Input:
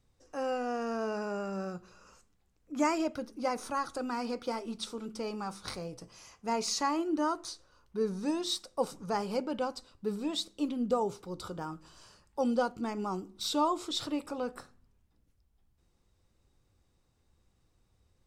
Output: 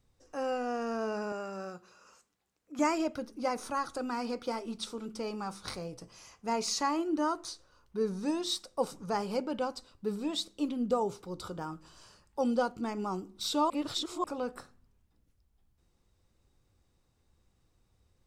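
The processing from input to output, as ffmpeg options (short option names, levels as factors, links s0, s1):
-filter_complex "[0:a]asettb=1/sr,asplit=3[s0][s1][s2];[s0]atrim=end=1.324[s3];[s1]atrim=start=1.32:end=2.79,asetpts=PTS-STARTPTS,afade=t=in:d=0.004:c=qsin,afade=t=out:st=1.466:d=0.004:c=qsin,highpass=f=420:p=1[s4];[s2]atrim=start=2.786[s5];[s3][s4]acrossfade=d=0.004:c1=hsin:c2=qsin[s6];[s6][s5]acrossfade=d=0.004:c1=qsin:c2=hsin,asplit=3[s7][s8][s9];[s7]atrim=end=13.702[s10];[s8]atrim=start=13.698:end=14.242,asetpts=PTS-STARTPTS,areverse[s11];[s9]atrim=start=14.238[s12];[s10][s11]acrossfade=d=0.004:c1=hsin:c2=hsin[s13];[s13][s12]acrossfade=d=0.004:c1=hsin:c2=hsin"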